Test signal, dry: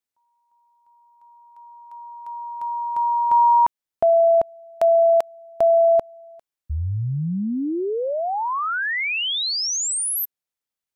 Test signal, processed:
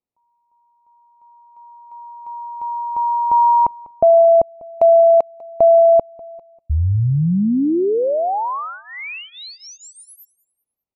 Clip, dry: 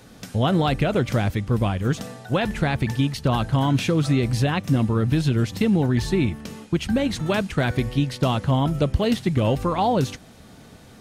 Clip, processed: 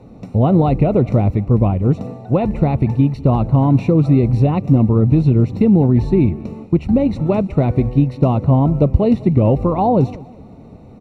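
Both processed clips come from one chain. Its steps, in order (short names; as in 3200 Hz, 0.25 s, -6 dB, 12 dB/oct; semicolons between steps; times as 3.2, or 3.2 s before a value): running mean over 27 samples; on a send: feedback echo 0.197 s, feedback 37%, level -21.5 dB; on the sum: gain +8 dB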